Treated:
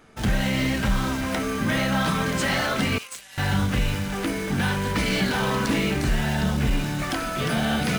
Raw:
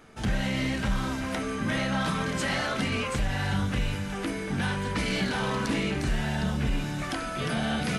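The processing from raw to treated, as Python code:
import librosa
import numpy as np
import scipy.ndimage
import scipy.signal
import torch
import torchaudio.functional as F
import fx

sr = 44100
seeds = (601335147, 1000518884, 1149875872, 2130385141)

p1 = fx.differentiator(x, sr, at=(2.98, 3.38))
p2 = fx.quant_dither(p1, sr, seeds[0], bits=6, dither='none')
y = p1 + (p2 * librosa.db_to_amplitude(-3.0))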